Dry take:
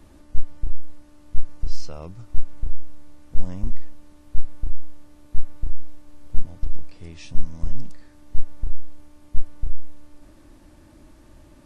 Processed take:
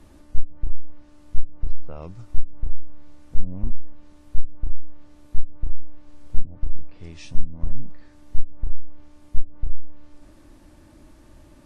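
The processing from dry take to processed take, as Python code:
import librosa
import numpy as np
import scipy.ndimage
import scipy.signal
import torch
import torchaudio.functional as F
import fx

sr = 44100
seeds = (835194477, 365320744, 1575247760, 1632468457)

y = fx.env_lowpass_down(x, sr, base_hz=350.0, full_db=-8.0)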